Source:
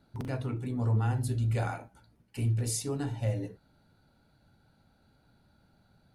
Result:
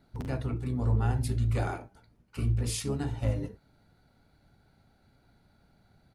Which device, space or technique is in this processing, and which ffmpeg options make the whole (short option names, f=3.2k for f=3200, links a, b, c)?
octave pedal: -filter_complex "[0:a]asettb=1/sr,asplit=3[a][b][c];[a]atrim=end=1.794[d];[b]atrim=start=1.79:end=2.79,asetpts=PTS-STARTPTS,afade=t=in:d=0.004:c=qsin,afade=t=out:st=0.996:d=0.004:c=qsin,highshelf=f=4.9k:g=-4[e];[c]atrim=start=2.786[f];[d][e]acrossfade=d=0.004:c1=hsin:c2=qsin[g];[g][f]acrossfade=d=0.004:c1=qsin:c2=hsin,asplit=2[h][i];[i]asetrate=22050,aresample=44100,atempo=2,volume=-4dB[j];[h][j]amix=inputs=2:normalize=0"